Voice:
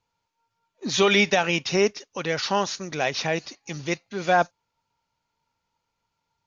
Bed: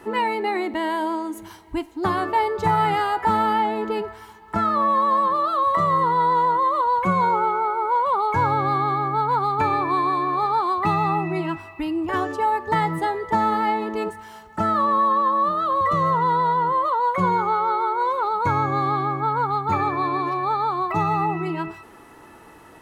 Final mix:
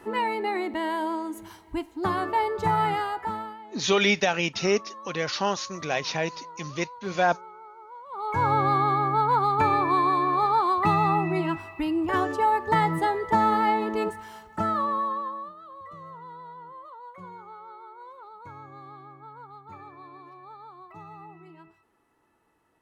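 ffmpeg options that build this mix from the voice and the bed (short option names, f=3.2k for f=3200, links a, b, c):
-filter_complex "[0:a]adelay=2900,volume=-2.5dB[a];[1:a]volume=18.5dB,afade=t=out:st=2.84:d=0.73:silence=0.105925,afade=t=in:st=8.09:d=0.46:silence=0.0749894,afade=t=out:st=14.15:d=1.39:silence=0.0794328[b];[a][b]amix=inputs=2:normalize=0"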